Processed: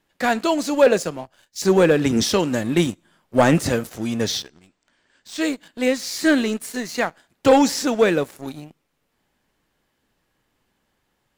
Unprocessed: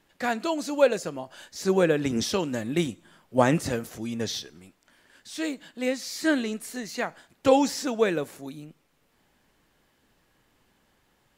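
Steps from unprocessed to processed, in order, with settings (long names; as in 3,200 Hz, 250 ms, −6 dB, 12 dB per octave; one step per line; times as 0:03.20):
0:04.37–0:05.41: elliptic low-pass filter 8,400 Hz
leveller curve on the samples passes 2
0:00.86–0:01.62: multiband upward and downward expander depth 100%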